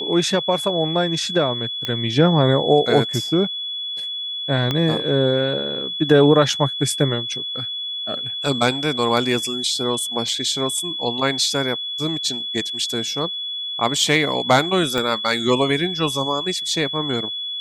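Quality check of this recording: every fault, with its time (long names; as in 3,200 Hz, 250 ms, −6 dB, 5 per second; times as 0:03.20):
whistle 3,400 Hz −25 dBFS
0:01.85: click −10 dBFS
0:04.71: click −8 dBFS
0:14.98: click −9 dBFS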